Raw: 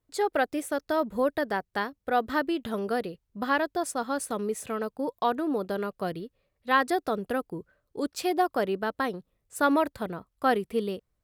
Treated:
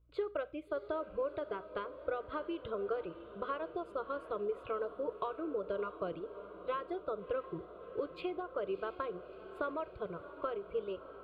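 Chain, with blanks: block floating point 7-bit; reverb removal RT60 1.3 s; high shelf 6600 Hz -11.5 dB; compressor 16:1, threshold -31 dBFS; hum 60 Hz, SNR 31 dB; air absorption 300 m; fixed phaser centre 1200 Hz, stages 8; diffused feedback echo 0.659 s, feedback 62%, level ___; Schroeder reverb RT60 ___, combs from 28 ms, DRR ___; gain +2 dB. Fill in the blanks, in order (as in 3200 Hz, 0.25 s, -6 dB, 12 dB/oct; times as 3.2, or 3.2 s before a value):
-13 dB, 0.37 s, 18 dB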